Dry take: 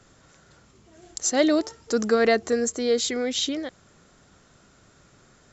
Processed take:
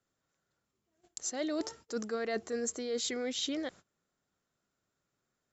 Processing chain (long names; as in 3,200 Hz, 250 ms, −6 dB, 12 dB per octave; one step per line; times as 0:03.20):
noise gate −46 dBFS, range −23 dB
low-shelf EQ 110 Hz −7.5 dB
reversed playback
downward compressor 10 to 1, threshold −28 dBFS, peak gain reduction 13 dB
reversed playback
level −3.5 dB